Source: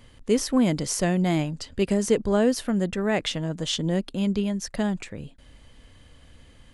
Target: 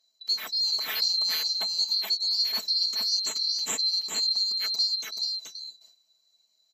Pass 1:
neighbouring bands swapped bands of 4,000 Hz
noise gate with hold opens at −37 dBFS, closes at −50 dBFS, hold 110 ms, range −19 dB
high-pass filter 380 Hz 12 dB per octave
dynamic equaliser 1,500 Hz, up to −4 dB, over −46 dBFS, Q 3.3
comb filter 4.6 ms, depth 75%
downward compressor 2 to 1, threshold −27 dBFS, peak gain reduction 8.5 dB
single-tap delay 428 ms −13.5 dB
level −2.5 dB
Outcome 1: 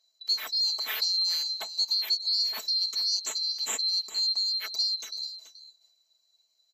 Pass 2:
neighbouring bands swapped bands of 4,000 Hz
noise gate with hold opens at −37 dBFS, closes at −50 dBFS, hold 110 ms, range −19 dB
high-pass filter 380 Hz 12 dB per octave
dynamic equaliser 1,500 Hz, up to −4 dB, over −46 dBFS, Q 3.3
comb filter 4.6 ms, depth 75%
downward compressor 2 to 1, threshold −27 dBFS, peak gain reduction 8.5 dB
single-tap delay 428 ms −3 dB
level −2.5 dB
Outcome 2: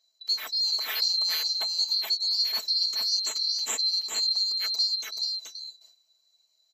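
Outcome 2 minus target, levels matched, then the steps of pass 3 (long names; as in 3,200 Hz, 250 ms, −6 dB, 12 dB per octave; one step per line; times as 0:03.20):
250 Hz band −7.0 dB
neighbouring bands swapped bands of 4,000 Hz
noise gate with hold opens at −37 dBFS, closes at −50 dBFS, hold 110 ms, range −19 dB
high-pass filter 180 Hz 12 dB per octave
dynamic equaliser 1,500 Hz, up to −4 dB, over −46 dBFS, Q 3.3
comb filter 4.6 ms, depth 75%
downward compressor 2 to 1, threshold −27 dBFS, peak gain reduction 8.5 dB
single-tap delay 428 ms −3 dB
level −2.5 dB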